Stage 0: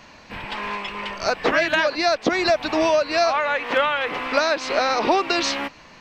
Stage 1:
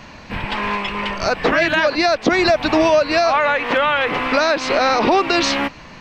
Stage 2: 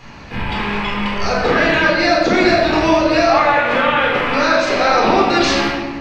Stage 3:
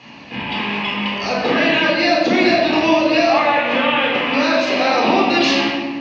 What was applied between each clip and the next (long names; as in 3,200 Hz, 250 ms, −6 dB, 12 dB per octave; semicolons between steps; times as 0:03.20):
brickwall limiter −13 dBFS, peak gain reduction 5.5 dB; bass and treble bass +6 dB, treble −3 dB; level +6.5 dB
rectangular room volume 1,200 cubic metres, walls mixed, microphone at 4 metres; level −5.5 dB
loudspeaker in its box 180–5,900 Hz, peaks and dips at 260 Hz +6 dB, 420 Hz −4 dB, 1,400 Hz −9 dB, 2,800 Hz +7 dB; level −1 dB